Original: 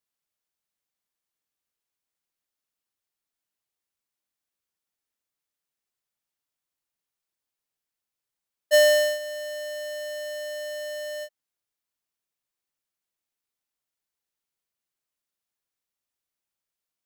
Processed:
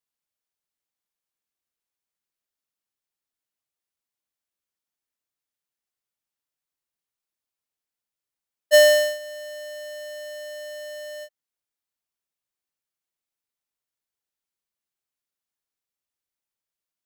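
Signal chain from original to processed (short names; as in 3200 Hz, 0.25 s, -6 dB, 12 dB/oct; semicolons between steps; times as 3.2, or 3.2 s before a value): upward expander 1.5:1, over -28 dBFS; gain +4 dB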